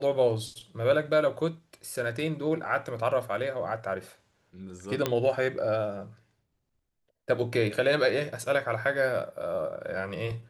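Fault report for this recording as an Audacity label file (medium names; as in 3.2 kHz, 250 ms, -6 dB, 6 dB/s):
5.060000	5.060000	pop -11 dBFS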